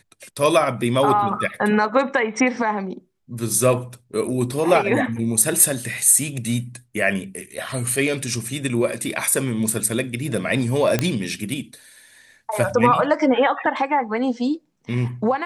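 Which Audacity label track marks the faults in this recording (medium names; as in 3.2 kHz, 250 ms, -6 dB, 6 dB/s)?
10.990000	10.990000	pop -5 dBFS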